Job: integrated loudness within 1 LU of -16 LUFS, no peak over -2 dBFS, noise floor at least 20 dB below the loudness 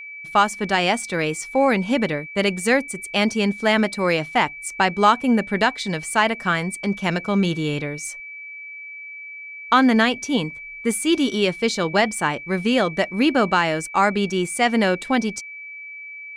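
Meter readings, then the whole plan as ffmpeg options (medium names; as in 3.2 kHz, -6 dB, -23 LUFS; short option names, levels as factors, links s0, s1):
steady tone 2.3 kHz; tone level -34 dBFS; loudness -20.5 LUFS; peak level -4.0 dBFS; loudness target -16.0 LUFS
-> -af "bandreject=f=2300:w=30"
-af "volume=1.68,alimiter=limit=0.794:level=0:latency=1"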